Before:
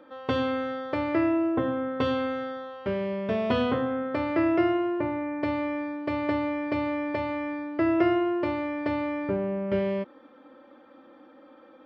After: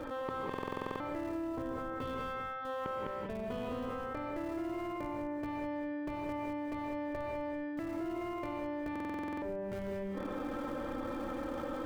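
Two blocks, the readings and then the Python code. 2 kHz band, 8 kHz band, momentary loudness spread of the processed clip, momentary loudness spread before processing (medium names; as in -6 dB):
-10.0 dB, no reading, 1 LU, 7 LU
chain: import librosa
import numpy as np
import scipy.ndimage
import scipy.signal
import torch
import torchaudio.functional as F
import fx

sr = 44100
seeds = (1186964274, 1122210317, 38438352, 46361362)

p1 = fx.high_shelf(x, sr, hz=3000.0, db=-5.0)
p2 = fx.gate_flip(p1, sr, shuts_db=-28.0, range_db=-27)
p3 = fx.schmitt(p2, sr, flips_db=-47.5)
p4 = p2 + (p3 * 10.0 ** (-8.5 / 20.0))
p5 = p4 + 10.0 ** (-8.0 / 20.0) * np.pad(p4, (int(205 * sr / 1000.0), 0))[:len(p4)]
p6 = fx.rider(p5, sr, range_db=10, speed_s=0.5)
p7 = fx.rev_gated(p6, sr, seeds[0], gate_ms=210, shape='rising', drr_db=0.5)
p8 = fx.buffer_glitch(p7, sr, at_s=(0.49, 8.91), block=2048, repeats=10)
p9 = fx.env_flatten(p8, sr, amount_pct=70)
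y = p9 * 10.0 ** (4.5 / 20.0)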